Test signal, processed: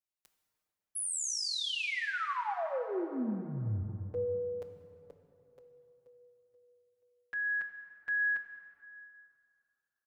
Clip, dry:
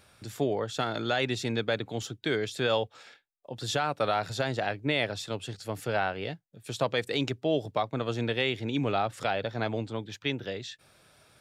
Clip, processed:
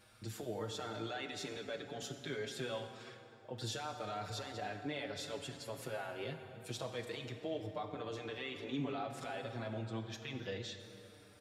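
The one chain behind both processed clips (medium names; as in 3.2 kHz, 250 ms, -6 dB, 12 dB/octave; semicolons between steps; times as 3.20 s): in parallel at -0.5 dB: compression, threshold -37 dBFS; on the sum: peak limiter -21 dBFS; plate-style reverb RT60 3 s, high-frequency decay 0.6×, DRR 5.5 dB; endless flanger 5.9 ms -0.29 Hz; trim -7.5 dB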